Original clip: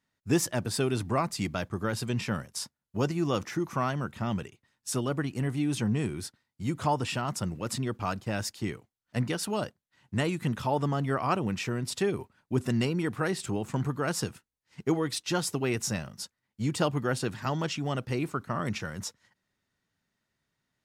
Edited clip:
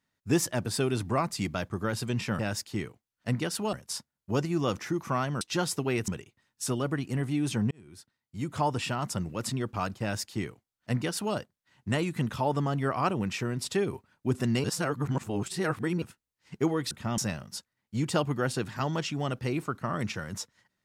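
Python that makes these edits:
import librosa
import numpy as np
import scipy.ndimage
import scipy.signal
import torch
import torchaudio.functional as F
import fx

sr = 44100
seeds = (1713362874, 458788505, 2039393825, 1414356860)

y = fx.edit(x, sr, fx.swap(start_s=4.07, length_s=0.27, other_s=15.17, other_length_s=0.67),
    fx.fade_in_span(start_s=5.97, length_s=1.0),
    fx.duplicate(start_s=8.27, length_s=1.34, to_s=2.39),
    fx.reverse_span(start_s=12.9, length_s=1.38), tone=tone)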